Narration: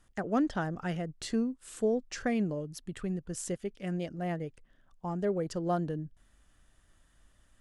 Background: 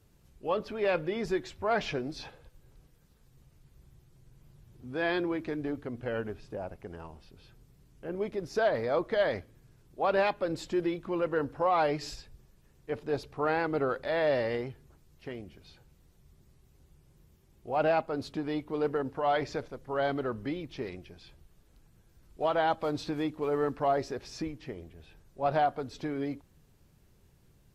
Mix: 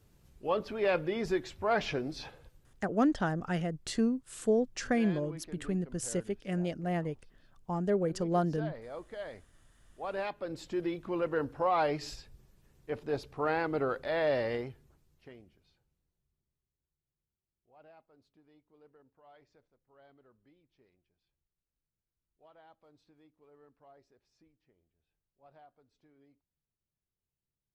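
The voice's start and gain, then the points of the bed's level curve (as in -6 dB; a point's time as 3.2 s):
2.65 s, +1.5 dB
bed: 2.45 s -0.5 dB
2.97 s -14.5 dB
9.61 s -14.5 dB
11.03 s -2 dB
14.58 s -2 dB
16.87 s -31.5 dB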